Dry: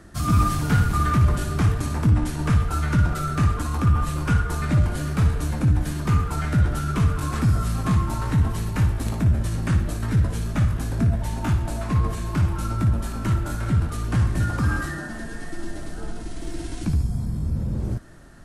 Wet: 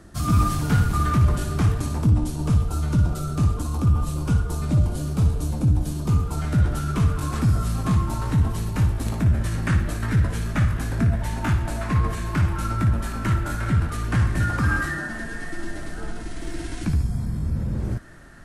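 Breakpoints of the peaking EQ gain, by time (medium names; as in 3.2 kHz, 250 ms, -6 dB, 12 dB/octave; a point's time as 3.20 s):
peaking EQ 1.8 kHz 1.1 oct
1.78 s -3 dB
2.23 s -14.5 dB
6.20 s -14.5 dB
6.61 s -3 dB
8.92 s -3 dB
9.49 s +6 dB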